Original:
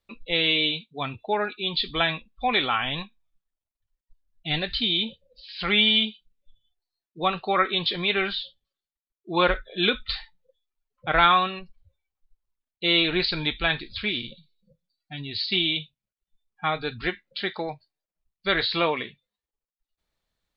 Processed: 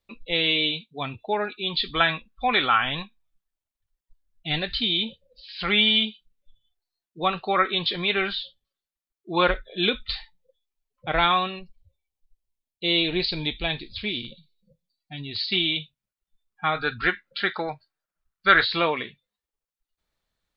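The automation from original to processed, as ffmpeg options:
-af "asetnsamples=n=441:p=0,asendcmd='1.7 equalizer g 7;2.97 equalizer g 1;9.51 equalizer g -5.5;11.56 equalizer g -14.5;14.25 equalizer g -6;15.36 equalizer g 3;16.75 equalizer g 13.5;18.64 equalizer g 2',equalizer=f=1.4k:t=o:w=0.7:g=-2.5"

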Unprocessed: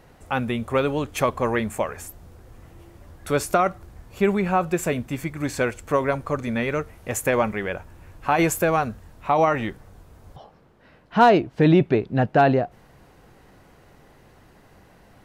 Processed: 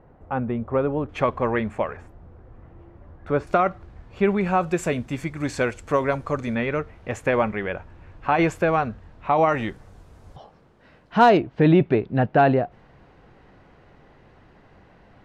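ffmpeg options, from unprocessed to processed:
-af "asetnsamples=n=441:p=0,asendcmd='1.09 lowpass f 2600;1.97 lowpass f 1500;3.47 lowpass f 3400;4.41 lowpass f 7400;6.55 lowpass f 3400;9.49 lowpass f 8700;11.37 lowpass f 3400',lowpass=1.1k"

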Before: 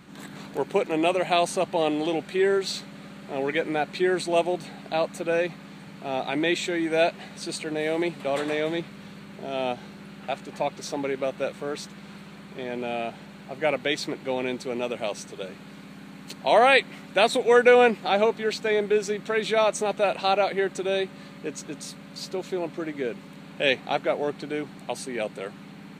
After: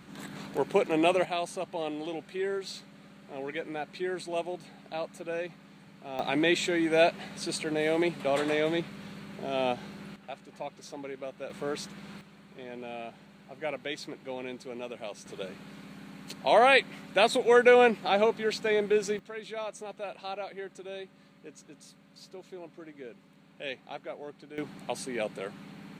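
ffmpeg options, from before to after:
-af "asetnsamples=n=441:p=0,asendcmd='1.25 volume volume -10dB;6.19 volume volume -1dB;10.16 volume volume -11.5dB;11.5 volume volume -2dB;12.21 volume volume -10dB;15.26 volume volume -3dB;19.19 volume volume -15dB;24.58 volume volume -3dB',volume=-1.5dB"

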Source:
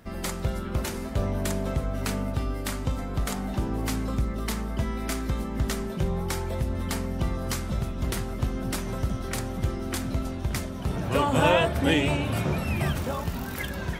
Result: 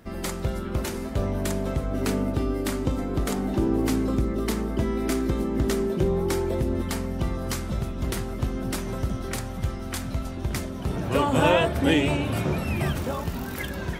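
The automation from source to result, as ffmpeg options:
-af "asetnsamples=n=441:p=0,asendcmd='1.91 equalizer g 12;6.82 equalizer g 3;9.36 equalizer g -5;10.37 equalizer g 3.5',equalizer=f=340:t=o:w=0.98:g=4"

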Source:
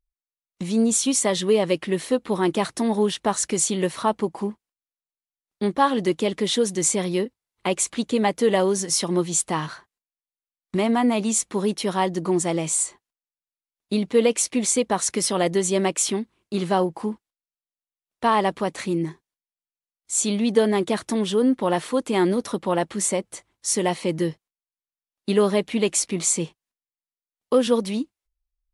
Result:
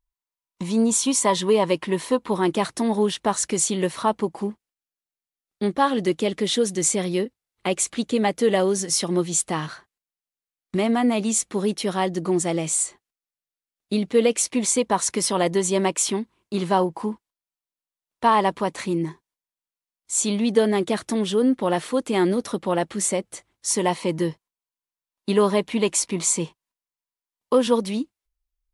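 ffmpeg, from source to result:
-af "asetnsamples=n=441:p=0,asendcmd='2.32 equalizer g 2;4.33 equalizer g -5;14.45 equalizer g 6;20.45 equalizer g -2.5;23.71 equalizer g 9;27.76 equalizer g 0',equalizer=f=980:t=o:w=0.23:g=14"

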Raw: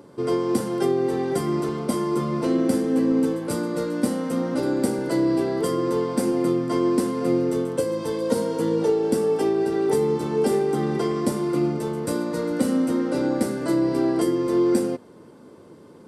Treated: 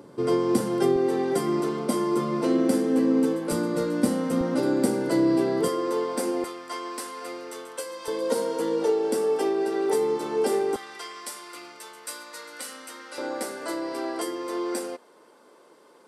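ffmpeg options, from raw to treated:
-af "asetnsamples=n=441:p=0,asendcmd='0.96 highpass f 200;3.52 highpass f 55;4.41 highpass f 130;5.68 highpass f 410;6.44 highpass f 1000;8.08 highpass f 390;10.76 highpass f 1500;13.18 highpass f 630',highpass=94"

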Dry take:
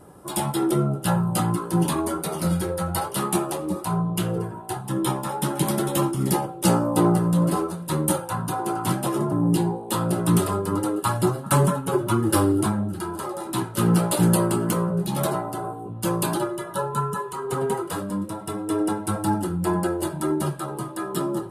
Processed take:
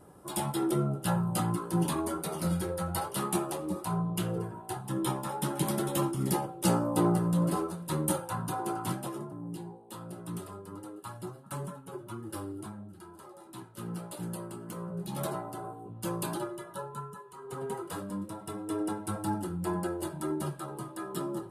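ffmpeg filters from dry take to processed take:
-af "volume=13dB,afade=t=out:st=8.68:d=0.66:silence=0.237137,afade=t=in:st=14.66:d=0.55:silence=0.334965,afade=t=out:st=16.48:d=0.76:silence=0.334965,afade=t=in:st=17.24:d=0.71:silence=0.298538"

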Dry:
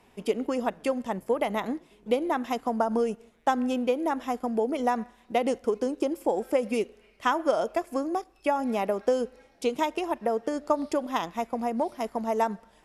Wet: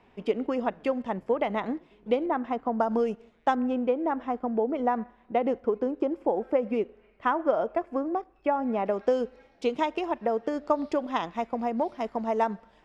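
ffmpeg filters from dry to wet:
-af "asetnsamples=n=441:p=0,asendcmd='2.26 lowpass f 1700;2.8 lowpass f 4000;3.55 lowpass f 1800;8.86 lowpass f 4000',lowpass=3.1k"

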